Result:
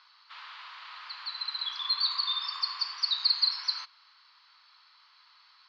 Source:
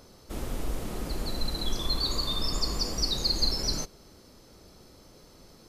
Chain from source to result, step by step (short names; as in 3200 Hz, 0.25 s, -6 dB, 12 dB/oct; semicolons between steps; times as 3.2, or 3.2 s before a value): Chebyshev band-pass 1000–4500 Hz, order 4; gain +3 dB